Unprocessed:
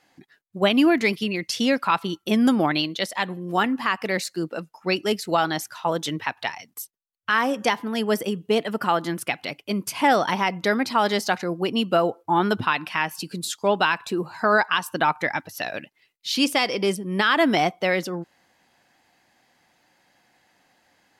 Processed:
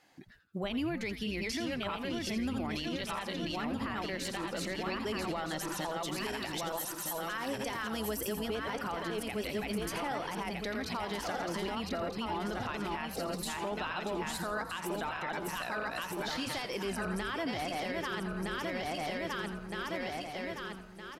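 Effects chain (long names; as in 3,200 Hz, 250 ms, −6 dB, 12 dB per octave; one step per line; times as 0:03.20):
feedback delay that plays each chunk backwards 632 ms, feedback 61%, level −3.5 dB
0:06.02–0:08.41: high-shelf EQ 5,300 Hz +10 dB
downward compressor 5 to 1, threshold −27 dBFS, peak gain reduction 13 dB
brickwall limiter −24 dBFS, peak gain reduction 10 dB
echo with shifted repeats 84 ms, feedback 34%, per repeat −150 Hz, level −11 dB
level −3 dB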